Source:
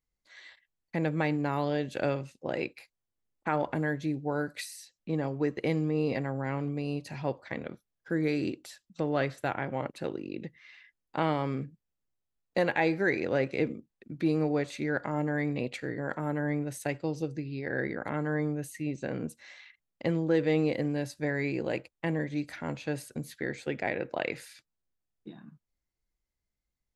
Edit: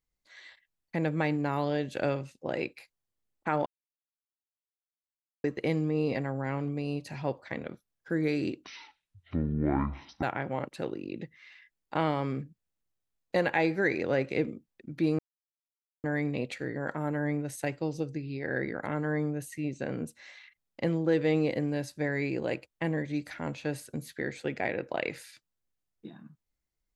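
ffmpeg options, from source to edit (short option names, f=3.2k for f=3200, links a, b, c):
-filter_complex "[0:a]asplit=7[a][b][c][d][e][f][g];[a]atrim=end=3.66,asetpts=PTS-STARTPTS,afade=t=out:st=3.656:d=0.004:c=hsin[h];[b]atrim=start=3.66:end=5.44,asetpts=PTS-STARTPTS,volume=0[i];[c]atrim=start=5.44:end=8.644,asetpts=PTS-STARTPTS,afade=t=in:d=0.004:c=hsin[j];[d]atrim=start=8.64:end=9.45,asetpts=PTS-STARTPTS,asetrate=22491,aresample=44100,atrim=end_sample=70041,asetpts=PTS-STARTPTS[k];[e]atrim=start=9.446:end=14.41,asetpts=PTS-STARTPTS,afade=t=out:st=4.96:d=0.004:c=hsin[l];[f]atrim=start=14.41:end=15.26,asetpts=PTS-STARTPTS,volume=0[m];[g]atrim=start=15.26,asetpts=PTS-STARTPTS,afade=t=in:d=0.004:c=hsin[n];[h][i][j]concat=n=3:v=0:a=1[o];[o][k]acrossfade=d=0.004:c1=hsin:c2=hsin[p];[l][m][n]concat=n=3:v=0:a=1[q];[p][q]acrossfade=d=0.004:c1=hsin:c2=hsin"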